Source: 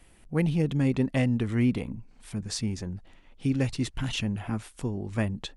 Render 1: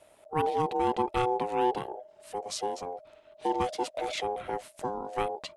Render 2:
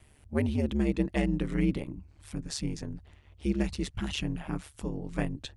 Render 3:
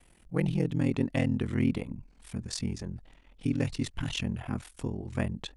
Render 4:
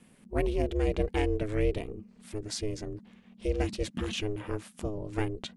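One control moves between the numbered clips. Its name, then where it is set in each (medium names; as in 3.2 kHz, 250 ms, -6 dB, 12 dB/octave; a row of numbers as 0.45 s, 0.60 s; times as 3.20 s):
ring modulator, frequency: 620 Hz, 72 Hz, 21 Hz, 210 Hz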